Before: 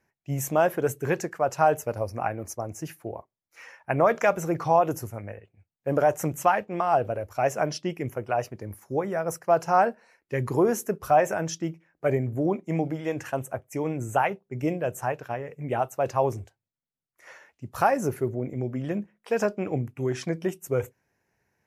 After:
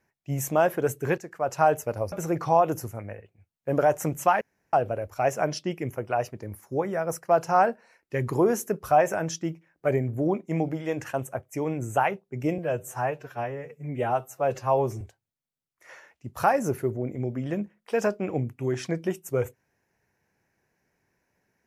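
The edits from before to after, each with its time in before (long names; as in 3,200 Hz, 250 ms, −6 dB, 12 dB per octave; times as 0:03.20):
0:01.18–0:01.57: fade in, from −13.5 dB
0:02.12–0:04.31: remove
0:06.60–0:06.92: fill with room tone
0:14.77–0:16.39: time-stretch 1.5×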